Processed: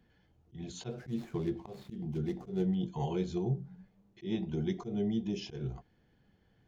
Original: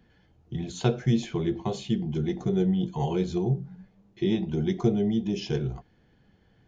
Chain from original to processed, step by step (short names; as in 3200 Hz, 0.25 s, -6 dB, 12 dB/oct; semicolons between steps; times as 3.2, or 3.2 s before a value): 0.9–2.75 median filter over 15 samples; auto swell 0.142 s; gain -6.5 dB